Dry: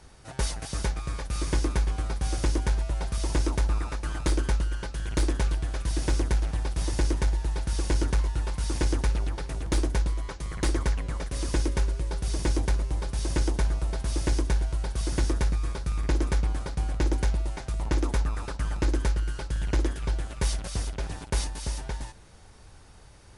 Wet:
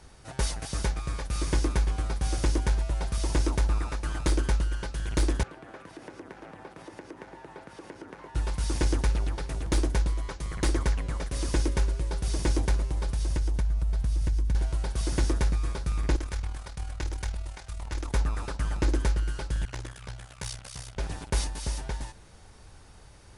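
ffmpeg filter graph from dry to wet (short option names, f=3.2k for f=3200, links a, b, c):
-filter_complex "[0:a]asettb=1/sr,asplit=3[a][b][c];[a]atrim=end=5.434[d];[b]atrim=start=5.43:end=8.35,asetpts=PTS-STARTPTS,afade=t=in:d=0.004:c=qsin,afade=t=out:st=2.916:d=0.004:c=qsin,highpass=f=100:w=0.5412,highpass=f=100:w=1.3066,acompressor=threshold=-36dB:ratio=6:attack=3.2:release=140:knee=1:detection=peak,acrossover=split=230 2400:gain=0.251 1 0.141[e][f][g];[e][f][g]amix=inputs=3:normalize=0[h];[c]atrim=start=8.346[i];[d][h]acrossfade=d=0.004:c1=hsin:c2=qsin[j];[j][i]acrossfade=d=0.004:c1=qsin:c2=hsin,asettb=1/sr,asplit=3[k][l][m];[k]atrim=end=12.904[n];[l]atrim=start=12.9:end=14.55,asetpts=PTS-STARTPTS,afade=t=in:d=0.004:c=qsin,afade=t=out:st=1.646:d=0.004:c=qsin,asubboost=boost=10.5:cutoff=150,acompressor=threshold=-24dB:ratio=6:attack=3.2:release=140:knee=1:detection=peak[o];[m]atrim=start=14.546[p];[n][o]acrossfade=d=0.004:c1=hsin:c2=qsin[q];[q][p]acrossfade=d=0.004:c1=qsin:c2=hsin,asettb=1/sr,asplit=3[r][s][t];[r]atrim=end=16.164[u];[s]atrim=start=16.16:end=18.14,asetpts=PTS-STARTPTS,afade=t=in:d=0.004:c=qsin,afade=t=out:st=1.976:d=0.004:c=qsin,highpass=48,equalizer=f=270:t=o:w=2.7:g=-10.5,tremolo=f=39:d=0.621[v];[t]atrim=start=18.136[w];[u][v]acrossfade=d=0.004:c1=hsin:c2=qsin[x];[x][w]acrossfade=d=0.004:c1=qsin:c2=hsin,asettb=1/sr,asplit=3[y][z][aa];[y]atrim=end=19.654[ab];[z]atrim=start=19.65:end=20.97,asetpts=PTS-STARTPTS,afade=t=in:d=0.004:c=qsin,afade=t=out:st=1.316:d=0.004:c=qsin,equalizer=f=290:t=o:w=1.9:g=-11.5,tremolo=f=64:d=0.919,highpass=f=150:p=1[ac];[aa]atrim=start=20.966[ad];[ab][ac]acrossfade=d=0.004:c1=hsin:c2=qsin[ae];[ae][ad]acrossfade=d=0.004:c1=qsin:c2=hsin"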